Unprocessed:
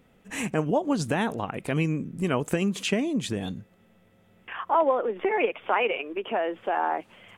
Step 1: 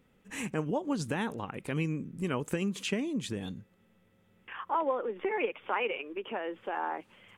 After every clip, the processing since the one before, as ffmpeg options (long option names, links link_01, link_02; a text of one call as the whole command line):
ffmpeg -i in.wav -af "equalizer=frequency=680:width=5.7:gain=-8.5,volume=-6dB" out.wav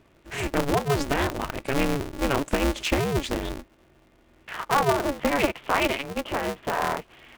ffmpeg -i in.wav -af "adynamicsmooth=sensitivity=5.5:basefreq=6200,aeval=exprs='val(0)*sgn(sin(2*PI*140*n/s))':channel_layout=same,volume=8dB" out.wav